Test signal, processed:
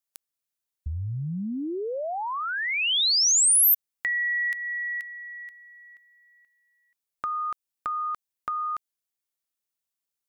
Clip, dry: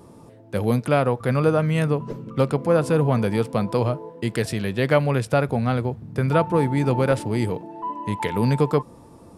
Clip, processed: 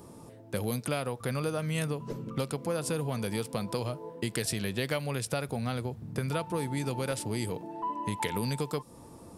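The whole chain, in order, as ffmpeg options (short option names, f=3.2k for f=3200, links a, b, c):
-filter_complex "[0:a]highshelf=f=5.1k:g=8,acrossover=split=2900[a][b];[a]acompressor=threshold=-26dB:ratio=6[c];[c][b]amix=inputs=2:normalize=0,volume=-3dB"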